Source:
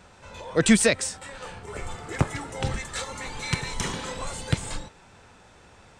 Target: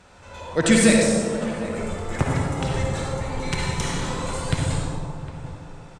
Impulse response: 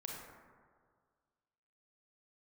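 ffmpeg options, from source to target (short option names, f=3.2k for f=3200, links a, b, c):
-filter_complex "[0:a]asettb=1/sr,asplit=3[a][b][c];[a]atrim=end=2.834[d];[b]atrim=start=2.83:end=3.52,asetpts=PTS-STARTPTS,afade=t=in:d=0.004:c=qsin,afade=t=out:st=0.686:d=0.004:c=qsin,tiltshelf=f=760:g=5.5[e];[c]atrim=start=3.516[f];[d][e]acrossfade=d=0.004:c1=hsin:c2=qsin[g];[g][f]acrossfade=d=0.004:c1=qsin:c2=hsin,asplit=2[h][i];[i]adelay=758,volume=-14dB,highshelf=f=4k:g=-17.1[j];[h][j]amix=inputs=2:normalize=0[k];[1:a]atrim=start_sample=2205,asetrate=26901,aresample=44100[l];[k][l]afir=irnorm=-1:irlink=0,volume=2.5dB"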